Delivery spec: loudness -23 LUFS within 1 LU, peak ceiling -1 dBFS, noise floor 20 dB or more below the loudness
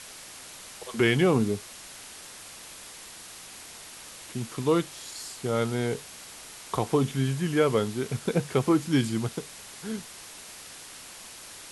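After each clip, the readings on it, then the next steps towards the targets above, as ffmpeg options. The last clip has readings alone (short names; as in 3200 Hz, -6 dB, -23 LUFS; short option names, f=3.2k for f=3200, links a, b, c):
noise floor -45 dBFS; noise floor target -48 dBFS; loudness -27.5 LUFS; peak -10.0 dBFS; loudness target -23.0 LUFS
-> -af "afftdn=nr=6:nf=-45"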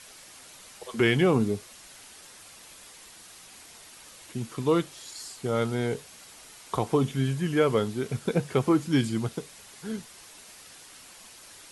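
noise floor -50 dBFS; loudness -27.5 LUFS; peak -10.0 dBFS; loudness target -23.0 LUFS
-> -af "volume=4.5dB"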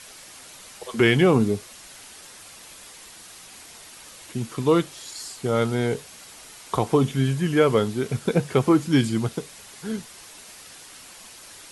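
loudness -23.0 LUFS; peak -5.5 dBFS; noise floor -45 dBFS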